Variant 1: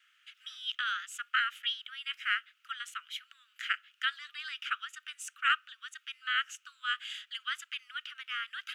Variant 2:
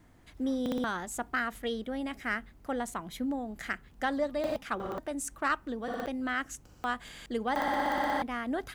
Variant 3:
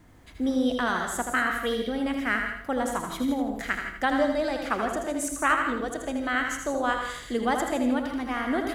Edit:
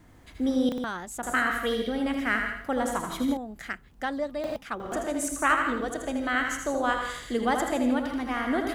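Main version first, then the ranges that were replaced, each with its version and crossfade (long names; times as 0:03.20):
3
0:00.69–0:01.23: punch in from 2
0:03.37–0:04.92: punch in from 2
not used: 1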